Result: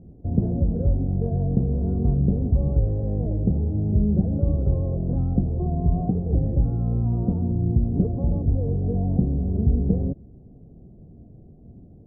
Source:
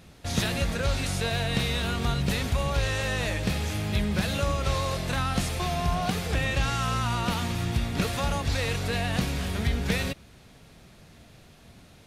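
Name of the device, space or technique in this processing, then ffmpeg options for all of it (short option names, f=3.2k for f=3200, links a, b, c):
under water: -filter_complex "[0:a]lowpass=f=410:w=0.5412,lowpass=f=410:w=1.3066,equalizer=f=740:t=o:w=0.34:g=8,asettb=1/sr,asplit=3[a][b][c];[a]atrim=end=8.164[d];[b]atrim=start=8.16:end=9.75,asetpts=PTS-STARTPTS,afade=t=in:d=0.004:c=qsin,afade=t=out:st=1.586:d=0.004:c=qsin,lowpass=1.5k[e];[c]atrim=start=9.746[f];[d][e]acrossfade=d=0.004:c1=hsin:c2=qsin[g];[g][f]acrossfade=d=0.004:c1=qsin:c2=hsin,volume=7dB"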